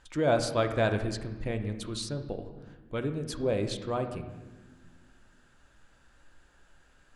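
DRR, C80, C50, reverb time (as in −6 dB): 6.5 dB, 11.0 dB, 9.0 dB, 1.4 s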